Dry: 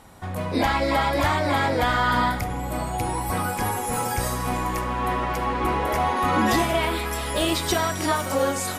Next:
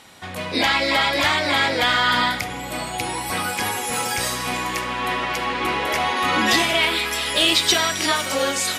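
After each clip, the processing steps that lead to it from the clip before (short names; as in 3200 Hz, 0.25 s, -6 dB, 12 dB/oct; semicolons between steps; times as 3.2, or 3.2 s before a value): weighting filter D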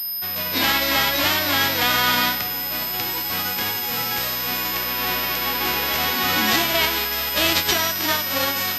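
spectral whitening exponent 0.3; whine 5100 Hz -30 dBFS; pulse-width modulation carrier 13000 Hz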